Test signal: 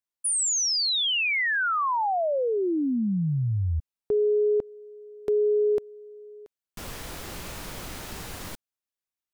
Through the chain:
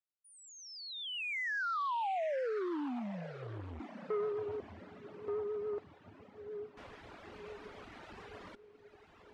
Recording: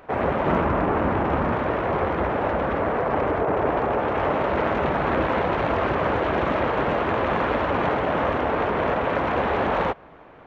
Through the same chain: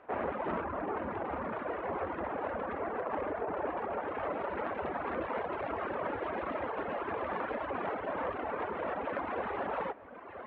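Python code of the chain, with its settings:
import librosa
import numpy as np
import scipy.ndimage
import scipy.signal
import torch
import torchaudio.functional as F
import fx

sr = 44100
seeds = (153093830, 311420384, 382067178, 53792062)

p1 = fx.low_shelf(x, sr, hz=180.0, db=-3.5)
p2 = fx.rider(p1, sr, range_db=3, speed_s=2.0)
p3 = fx.peak_eq(p2, sr, hz=140.0, db=-10.0, octaves=0.48)
p4 = p3 + fx.echo_diffused(p3, sr, ms=977, feedback_pct=61, wet_db=-11, dry=0)
p5 = fx.dereverb_blind(p4, sr, rt60_s=1.6)
p6 = scipy.signal.sosfilt(scipy.signal.butter(2, 2400.0, 'lowpass', fs=sr, output='sos'), p5)
p7 = fx.vibrato(p6, sr, rate_hz=7.1, depth_cents=42.0)
p8 = fx.highpass(p7, sr, hz=97.0, slope=6)
p9 = fx.transformer_sat(p8, sr, knee_hz=590.0)
y = p9 * 10.0 ** (-8.5 / 20.0)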